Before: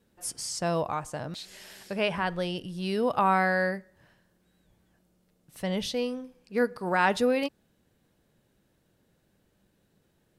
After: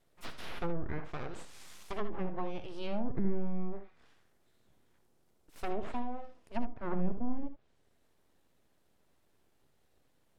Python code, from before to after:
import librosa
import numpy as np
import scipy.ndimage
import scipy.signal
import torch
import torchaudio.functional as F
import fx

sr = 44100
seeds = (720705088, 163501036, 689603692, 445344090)

y = np.abs(x)
y = fx.env_lowpass_down(y, sr, base_hz=320.0, full_db=-22.5)
y = fx.room_early_taps(y, sr, ms=(61, 76), db=(-14.5, -12.0))
y = y * librosa.db_to_amplitude(-2.5)